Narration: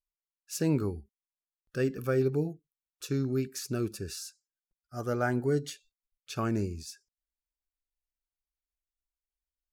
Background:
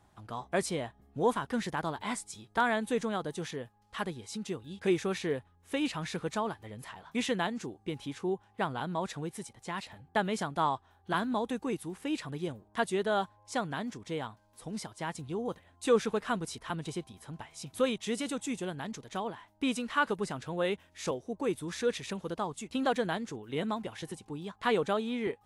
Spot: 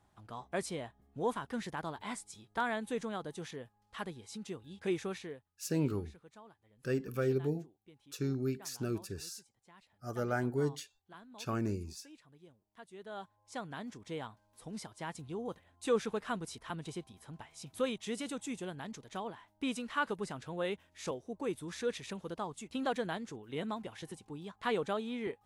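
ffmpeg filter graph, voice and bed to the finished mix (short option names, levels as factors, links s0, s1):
-filter_complex "[0:a]adelay=5100,volume=0.596[s0];[1:a]volume=3.98,afade=t=out:st=5.06:d=0.38:silence=0.141254,afade=t=in:st=12.89:d=1.23:silence=0.125893[s1];[s0][s1]amix=inputs=2:normalize=0"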